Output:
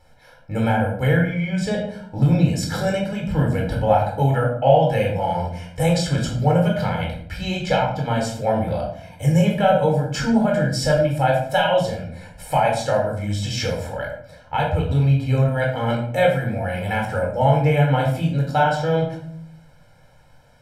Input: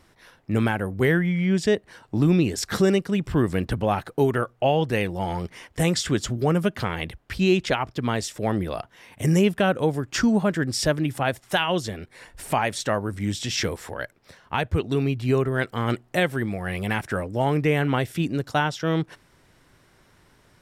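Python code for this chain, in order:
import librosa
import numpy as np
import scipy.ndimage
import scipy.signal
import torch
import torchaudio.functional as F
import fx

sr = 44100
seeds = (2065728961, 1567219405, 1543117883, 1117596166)

y = fx.peak_eq(x, sr, hz=530.0, db=9.5, octaves=0.95)
y = y + 0.93 * np.pad(y, (int(1.3 * sr / 1000.0), 0))[:len(y)]
y = fx.room_shoebox(y, sr, seeds[0], volume_m3=1000.0, walls='furnished', distance_m=4.2)
y = y * 10.0 ** (-7.5 / 20.0)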